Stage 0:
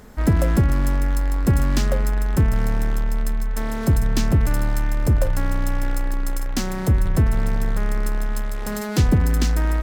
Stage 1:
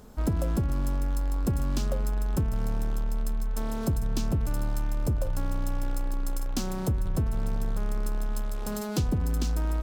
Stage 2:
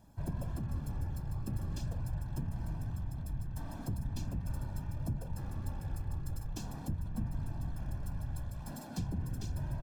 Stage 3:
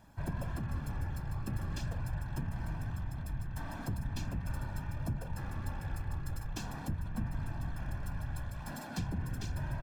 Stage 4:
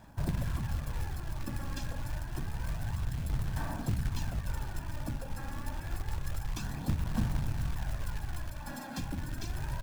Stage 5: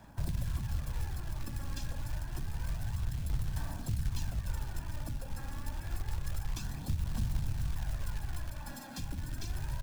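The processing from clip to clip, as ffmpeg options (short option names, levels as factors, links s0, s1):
-af "equalizer=f=1900:t=o:w=0.54:g=-11,acompressor=threshold=0.126:ratio=6,volume=0.562"
-af "aecho=1:1:1.2:0.76,afftfilt=real='hypot(re,im)*cos(2*PI*random(0))':imag='hypot(re,im)*sin(2*PI*random(1))':win_size=512:overlap=0.75,volume=0.398"
-af "equalizer=f=1800:t=o:w=1.9:g=10"
-af "bandreject=f=91.32:t=h:w=4,bandreject=f=182.64:t=h:w=4,bandreject=f=273.96:t=h:w=4,bandreject=f=365.28:t=h:w=4,bandreject=f=456.6:t=h:w=4,aphaser=in_gain=1:out_gain=1:delay=3.7:decay=0.48:speed=0.28:type=sinusoidal,acrusher=bits=4:mode=log:mix=0:aa=0.000001"
-filter_complex "[0:a]acrossover=split=130|3000[s0][s1][s2];[s1]acompressor=threshold=0.00398:ratio=2.5[s3];[s0][s3][s2]amix=inputs=3:normalize=0"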